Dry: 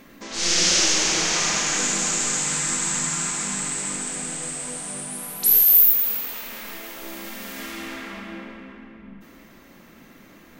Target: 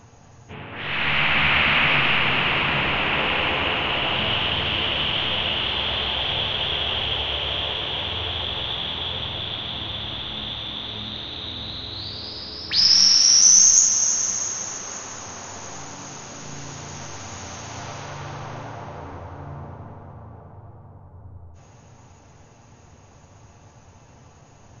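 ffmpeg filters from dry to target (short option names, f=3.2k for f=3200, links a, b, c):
-af "asetrate=18846,aresample=44100"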